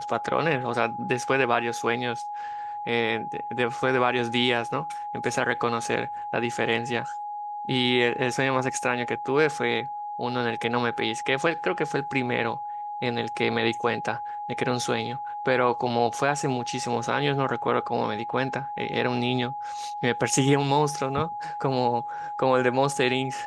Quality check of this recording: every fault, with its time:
tone 830 Hz -31 dBFS

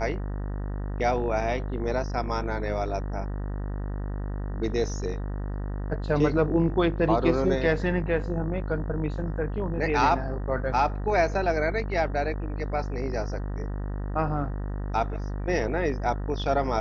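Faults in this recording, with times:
buzz 50 Hz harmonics 38 -31 dBFS

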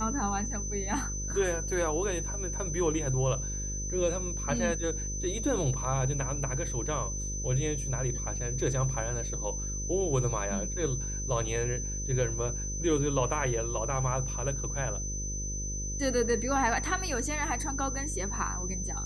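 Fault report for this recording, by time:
buzz 50 Hz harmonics 11 -36 dBFS
tone 6100 Hz -36 dBFS

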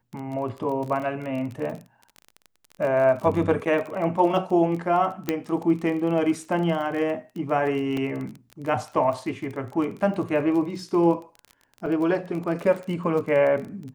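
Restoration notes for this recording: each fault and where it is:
crackle 26/s -31 dBFS
5.29 pop -10 dBFS
7.97 gap 3.2 ms
11.86 gap 4.4 ms

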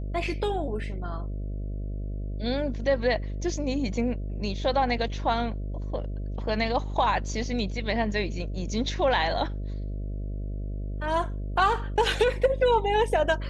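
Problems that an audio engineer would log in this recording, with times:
buzz 50 Hz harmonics 13 -32 dBFS

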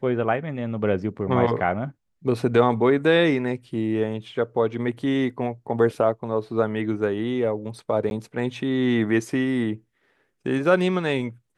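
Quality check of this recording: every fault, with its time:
8.1–8.11 gap 11 ms

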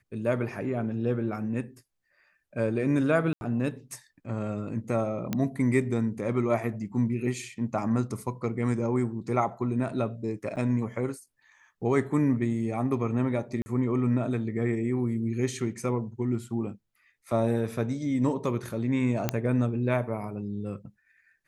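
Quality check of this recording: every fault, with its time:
3.33–3.41 gap 81 ms
5.33 pop -14 dBFS
10.56–10.57 gap 7.7 ms
13.62–13.66 gap 40 ms
19.29 pop -10 dBFS

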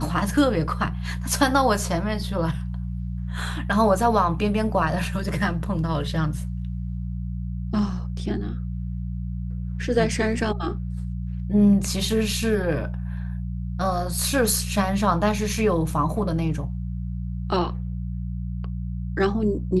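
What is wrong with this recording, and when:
hum 60 Hz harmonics 3 -29 dBFS

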